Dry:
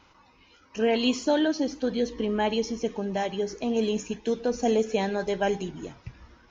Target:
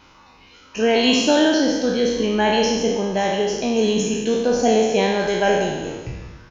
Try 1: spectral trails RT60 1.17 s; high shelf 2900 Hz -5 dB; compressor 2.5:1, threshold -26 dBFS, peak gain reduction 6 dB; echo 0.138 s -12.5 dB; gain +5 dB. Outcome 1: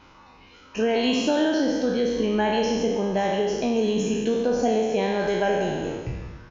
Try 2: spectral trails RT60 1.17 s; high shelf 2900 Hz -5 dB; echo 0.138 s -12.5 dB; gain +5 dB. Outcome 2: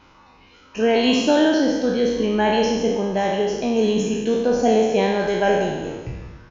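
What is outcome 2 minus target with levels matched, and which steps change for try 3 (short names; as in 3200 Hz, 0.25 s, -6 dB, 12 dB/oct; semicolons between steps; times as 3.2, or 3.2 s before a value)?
8000 Hz band -5.5 dB
change: high shelf 2900 Hz +2.5 dB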